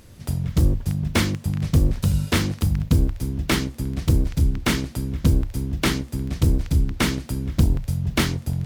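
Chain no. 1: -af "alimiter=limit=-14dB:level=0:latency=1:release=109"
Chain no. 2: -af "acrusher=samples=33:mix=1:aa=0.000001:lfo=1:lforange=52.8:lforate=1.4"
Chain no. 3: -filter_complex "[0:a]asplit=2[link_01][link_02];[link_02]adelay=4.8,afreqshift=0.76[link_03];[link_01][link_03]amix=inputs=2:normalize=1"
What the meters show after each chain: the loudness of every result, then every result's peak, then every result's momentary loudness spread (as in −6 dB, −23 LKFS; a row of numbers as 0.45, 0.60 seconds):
−26.0, −23.0, −26.0 LKFS; −14.0, −6.0, −8.5 dBFS; 4, 6, 7 LU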